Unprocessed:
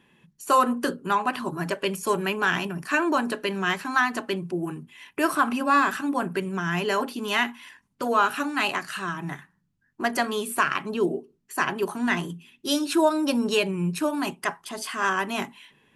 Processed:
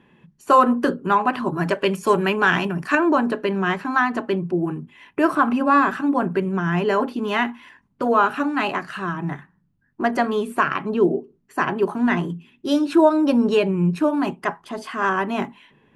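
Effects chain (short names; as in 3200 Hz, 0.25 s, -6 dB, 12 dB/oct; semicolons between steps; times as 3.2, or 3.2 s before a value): LPF 1400 Hz 6 dB/oct, from 1.56 s 2400 Hz, from 2.95 s 1000 Hz; gain +7 dB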